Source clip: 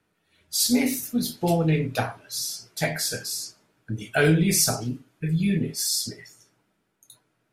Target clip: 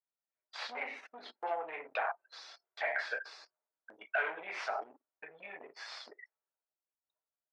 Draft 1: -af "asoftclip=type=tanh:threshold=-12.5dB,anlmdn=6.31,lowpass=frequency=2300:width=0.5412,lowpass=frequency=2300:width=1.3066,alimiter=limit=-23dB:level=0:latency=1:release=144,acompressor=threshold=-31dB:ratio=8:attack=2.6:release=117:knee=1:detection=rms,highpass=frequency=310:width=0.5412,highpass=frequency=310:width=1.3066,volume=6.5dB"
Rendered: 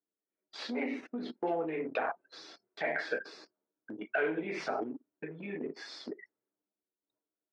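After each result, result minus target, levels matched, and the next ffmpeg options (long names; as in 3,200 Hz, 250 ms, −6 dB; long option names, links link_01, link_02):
250 Hz band +20.0 dB; soft clipping: distortion −8 dB
-af "asoftclip=type=tanh:threshold=-12.5dB,anlmdn=6.31,lowpass=frequency=2300:width=0.5412,lowpass=frequency=2300:width=1.3066,alimiter=limit=-23dB:level=0:latency=1:release=144,acompressor=threshold=-31dB:ratio=8:attack=2.6:release=117:knee=1:detection=rms,highpass=frequency=650:width=0.5412,highpass=frequency=650:width=1.3066,volume=6.5dB"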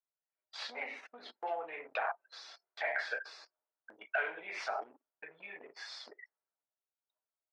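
soft clipping: distortion −8 dB
-af "asoftclip=type=tanh:threshold=-18.5dB,anlmdn=6.31,lowpass=frequency=2300:width=0.5412,lowpass=frequency=2300:width=1.3066,alimiter=limit=-23dB:level=0:latency=1:release=144,acompressor=threshold=-31dB:ratio=8:attack=2.6:release=117:knee=1:detection=rms,highpass=frequency=650:width=0.5412,highpass=frequency=650:width=1.3066,volume=6.5dB"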